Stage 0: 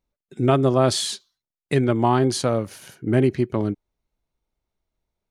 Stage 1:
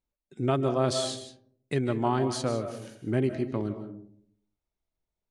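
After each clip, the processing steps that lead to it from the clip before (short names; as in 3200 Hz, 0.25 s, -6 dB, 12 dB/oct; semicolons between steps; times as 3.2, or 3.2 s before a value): LPF 10000 Hz 24 dB/oct; reverb RT60 0.65 s, pre-delay 0.115 s, DRR 9 dB; gain -8 dB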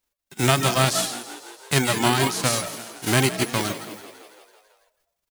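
spectral whitening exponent 0.3; reverb removal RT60 0.92 s; frequency-shifting echo 0.166 s, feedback 64%, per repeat +54 Hz, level -15 dB; gain +7.5 dB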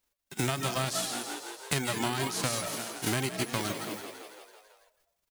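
compressor 8:1, threshold -27 dBFS, peak gain reduction 13.5 dB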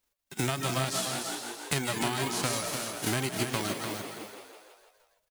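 echo 0.298 s -7 dB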